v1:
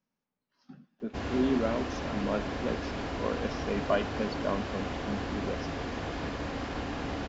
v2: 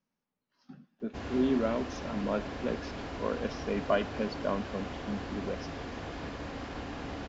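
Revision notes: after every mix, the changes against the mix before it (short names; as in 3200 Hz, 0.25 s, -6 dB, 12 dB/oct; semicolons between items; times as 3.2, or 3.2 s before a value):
background -4.5 dB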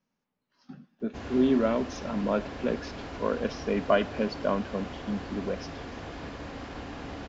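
speech +4.5 dB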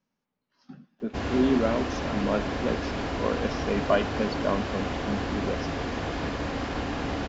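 background +9.0 dB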